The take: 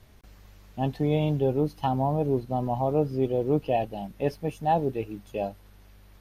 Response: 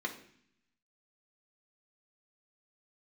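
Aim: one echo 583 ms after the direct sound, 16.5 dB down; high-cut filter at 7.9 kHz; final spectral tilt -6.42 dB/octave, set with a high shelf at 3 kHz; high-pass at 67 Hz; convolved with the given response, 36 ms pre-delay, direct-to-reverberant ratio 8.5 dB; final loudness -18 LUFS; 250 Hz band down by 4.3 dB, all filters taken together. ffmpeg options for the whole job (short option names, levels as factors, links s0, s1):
-filter_complex "[0:a]highpass=67,lowpass=7900,equalizer=f=250:t=o:g=-6,highshelf=f=3000:g=6.5,aecho=1:1:583:0.15,asplit=2[s0][s1];[1:a]atrim=start_sample=2205,adelay=36[s2];[s1][s2]afir=irnorm=-1:irlink=0,volume=0.237[s3];[s0][s3]amix=inputs=2:normalize=0,volume=3.35"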